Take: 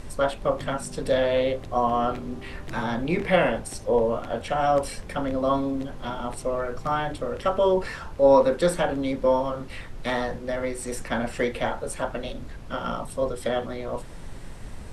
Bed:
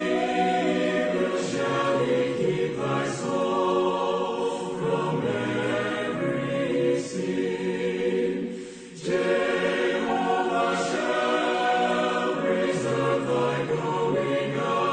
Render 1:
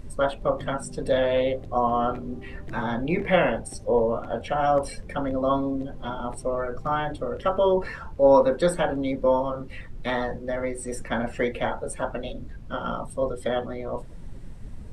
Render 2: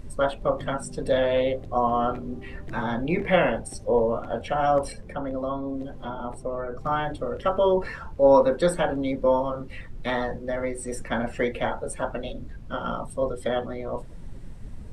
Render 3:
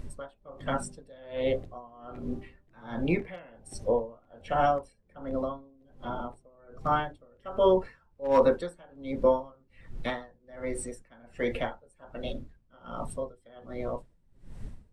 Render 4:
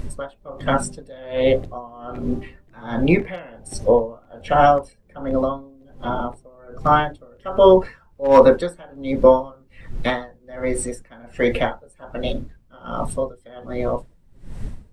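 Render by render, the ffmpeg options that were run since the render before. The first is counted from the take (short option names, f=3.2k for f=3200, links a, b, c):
-af "afftdn=nr=11:nf=-39"
-filter_complex "[0:a]asettb=1/sr,asplit=3[a][b][c];[a]atrim=end=4.924[d];[b]atrim=start=4.92:end=6.81,asetpts=PTS-STARTPTS,afade=t=in:d=0.004:c=qsin,afade=t=out:st=1.886:d=0.004:c=qsin,acrossover=split=110|260|1400[e][f][g][h];[e]acompressor=threshold=-37dB:ratio=3[i];[f]acompressor=threshold=-41dB:ratio=3[j];[g]acompressor=threshold=-29dB:ratio=3[k];[h]acompressor=threshold=-50dB:ratio=3[l];[i][j][k][l]amix=inputs=4:normalize=0[m];[c]atrim=start=6.806[n];[d][m]acrossfade=d=0.004:c1=hsin:c2=qsin[o];[o][n]acrossfade=d=0.004:c1=qsin:c2=hsin"
-af "asoftclip=type=hard:threshold=-10.5dB,aeval=exprs='val(0)*pow(10,-29*(0.5-0.5*cos(2*PI*1.3*n/s))/20)':c=same"
-af "volume=11dB,alimiter=limit=-1dB:level=0:latency=1"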